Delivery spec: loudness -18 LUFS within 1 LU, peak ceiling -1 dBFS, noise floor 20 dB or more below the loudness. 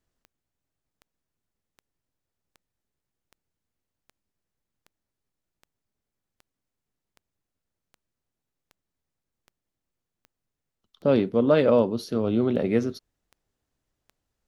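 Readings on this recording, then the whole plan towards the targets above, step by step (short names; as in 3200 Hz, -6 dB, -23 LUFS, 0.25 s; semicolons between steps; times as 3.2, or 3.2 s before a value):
clicks 19; loudness -23.0 LUFS; peak -8.0 dBFS; loudness target -18.0 LUFS
-> de-click; gain +5 dB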